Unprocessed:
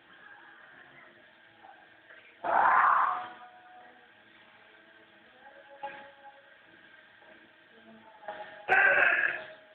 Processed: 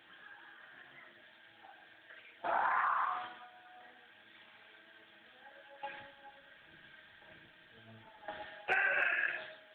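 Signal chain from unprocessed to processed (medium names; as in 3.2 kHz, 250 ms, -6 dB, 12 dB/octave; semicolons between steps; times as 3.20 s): 5.97–8.46 s: octave divider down 1 oct, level +2 dB; treble shelf 2.1 kHz +8.5 dB; compression 3:1, threshold -25 dBFS, peak gain reduction 7 dB; trim -5.5 dB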